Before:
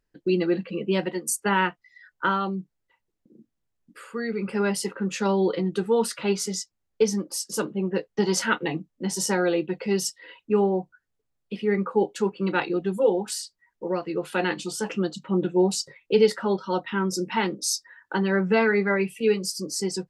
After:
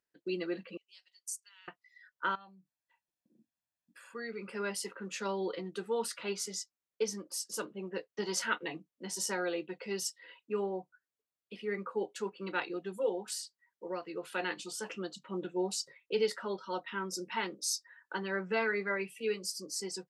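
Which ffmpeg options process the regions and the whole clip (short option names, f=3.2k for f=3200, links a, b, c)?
-filter_complex "[0:a]asettb=1/sr,asplit=3[a][b][c];[a]atrim=end=0.774[d];[b]atrim=start=0.77:end=1.68,asetpts=PTS-STARTPTS,afade=t=in:d=0.004:c=qsin,afade=t=out:st=0.906:d=0.004:c=qsin,bandpass=f=5.6k:t=q:w=2,aderivative[e];[c]atrim=start=1.676[f];[d][e]acrossfade=d=0.004:c1=hsin:c2=qsin[g];[g][f]acrossfade=d=0.004:c1=qsin:c2=hsin,asettb=1/sr,asplit=3[h][i][j];[h]atrim=end=2.354[k];[i]atrim=start=2.35:end=4.15,asetpts=PTS-STARTPTS,afade=t=in:d=0.004:c=qsin,afade=t=out:st=1.796:d=0.004:c=qsin,aecho=1:1:1.2:0.71,atrim=end_sample=79380,acompressor=threshold=-43dB:ratio=4:attack=3.2:release=140:knee=1:detection=peak[l];[j]atrim=start=4.146[m];[k][l]acrossfade=d=0.004:c1=hsin:c2=qsin[n];[n][m]acrossfade=d=0.004:c1=qsin:c2=hsin,highpass=f=560:p=1,bandreject=f=820:w=12,volume=-7.5dB"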